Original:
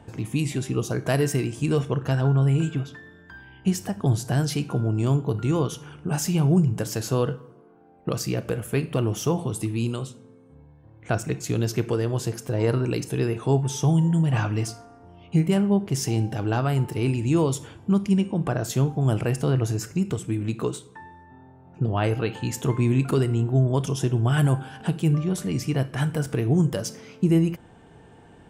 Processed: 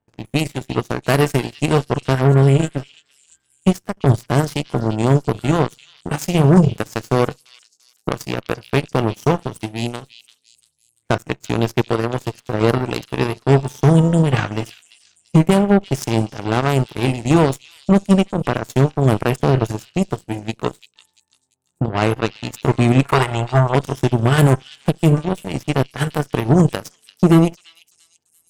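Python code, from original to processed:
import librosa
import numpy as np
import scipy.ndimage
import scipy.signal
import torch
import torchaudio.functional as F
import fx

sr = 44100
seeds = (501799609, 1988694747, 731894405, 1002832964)

y = fx.cheby_harmonics(x, sr, harmonics=(4, 7), levels_db=(-28, -17), full_scale_db=-9.0)
y = fx.graphic_eq(y, sr, hz=(250, 1000, 2000), db=(-12, 7, 7), at=(23.03, 23.75))
y = fx.echo_stepped(y, sr, ms=342, hz=3900.0, octaves=0.7, feedback_pct=70, wet_db=-10.5)
y = y * 10.0 ** (7.5 / 20.0)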